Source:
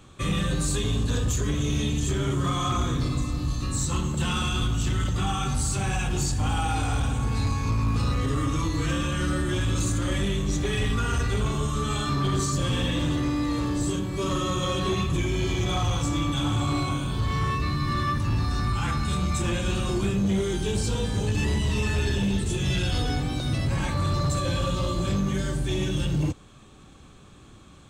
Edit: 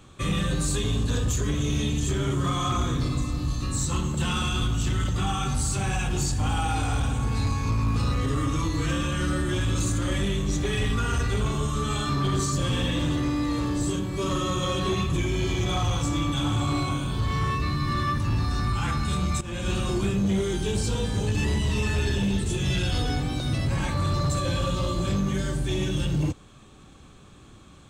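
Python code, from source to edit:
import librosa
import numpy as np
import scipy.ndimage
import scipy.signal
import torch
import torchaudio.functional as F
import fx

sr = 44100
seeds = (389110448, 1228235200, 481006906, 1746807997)

y = fx.edit(x, sr, fx.fade_in_from(start_s=19.41, length_s=0.3, floor_db=-16.0), tone=tone)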